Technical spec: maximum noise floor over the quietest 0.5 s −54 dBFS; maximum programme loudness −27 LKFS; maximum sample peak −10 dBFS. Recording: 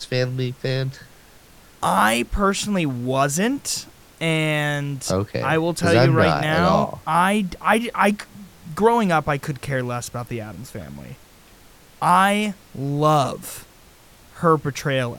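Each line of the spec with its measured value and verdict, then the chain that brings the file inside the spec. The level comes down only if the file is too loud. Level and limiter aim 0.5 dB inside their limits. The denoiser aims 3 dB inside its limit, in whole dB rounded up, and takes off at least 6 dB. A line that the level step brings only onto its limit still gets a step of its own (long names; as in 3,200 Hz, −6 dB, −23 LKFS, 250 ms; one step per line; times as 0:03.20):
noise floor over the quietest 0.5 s −49 dBFS: out of spec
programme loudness −20.5 LKFS: out of spec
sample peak −3.0 dBFS: out of spec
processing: level −7 dB
brickwall limiter −10.5 dBFS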